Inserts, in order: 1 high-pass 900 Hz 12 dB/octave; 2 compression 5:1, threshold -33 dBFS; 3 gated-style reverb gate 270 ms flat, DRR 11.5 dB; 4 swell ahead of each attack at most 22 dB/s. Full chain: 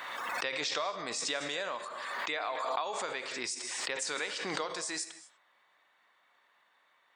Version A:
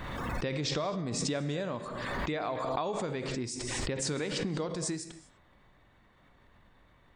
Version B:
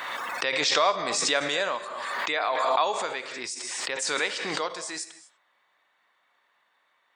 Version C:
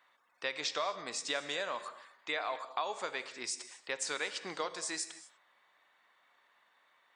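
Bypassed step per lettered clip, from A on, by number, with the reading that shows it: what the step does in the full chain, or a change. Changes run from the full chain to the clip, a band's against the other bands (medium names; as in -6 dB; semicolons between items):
1, 125 Hz band +22.0 dB; 2, 1 kHz band +2.5 dB; 4, 125 Hz band -2.5 dB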